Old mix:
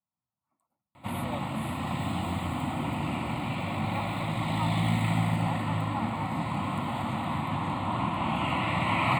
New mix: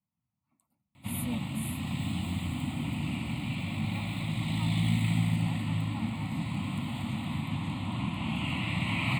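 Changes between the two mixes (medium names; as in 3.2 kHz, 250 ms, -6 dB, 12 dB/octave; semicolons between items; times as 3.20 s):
speech +10.0 dB; master: add high-order bell 790 Hz -12 dB 2.6 oct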